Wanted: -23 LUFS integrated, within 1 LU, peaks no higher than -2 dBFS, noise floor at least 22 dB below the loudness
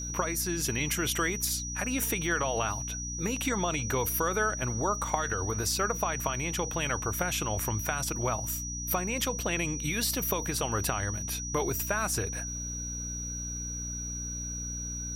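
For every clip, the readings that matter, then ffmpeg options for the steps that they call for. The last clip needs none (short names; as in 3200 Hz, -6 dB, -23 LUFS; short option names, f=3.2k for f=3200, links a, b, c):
hum 60 Hz; harmonics up to 300 Hz; hum level -37 dBFS; steady tone 5800 Hz; tone level -36 dBFS; loudness -30.5 LUFS; peak -10.5 dBFS; loudness target -23.0 LUFS
-> -af "bandreject=f=60:t=h:w=6,bandreject=f=120:t=h:w=6,bandreject=f=180:t=h:w=6,bandreject=f=240:t=h:w=6,bandreject=f=300:t=h:w=6"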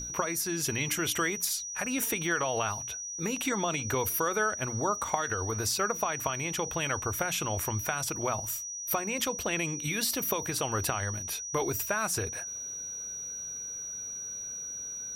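hum none; steady tone 5800 Hz; tone level -36 dBFS
-> -af "bandreject=f=5.8k:w=30"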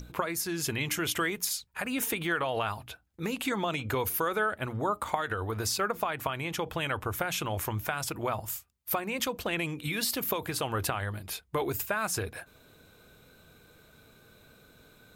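steady tone none; loudness -31.5 LUFS; peak -11.0 dBFS; loudness target -23.0 LUFS
-> -af "volume=8.5dB"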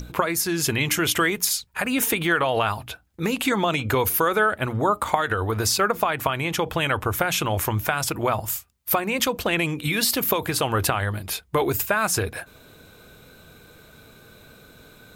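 loudness -23.0 LUFS; peak -2.5 dBFS; noise floor -51 dBFS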